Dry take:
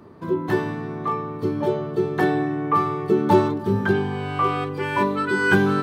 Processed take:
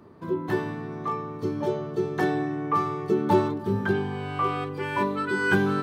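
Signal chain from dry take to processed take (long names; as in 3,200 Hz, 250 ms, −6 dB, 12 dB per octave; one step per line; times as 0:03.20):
0:00.92–0:03.14: parametric band 6,100 Hz +7 dB 0.59 octaves
level −4.5 dB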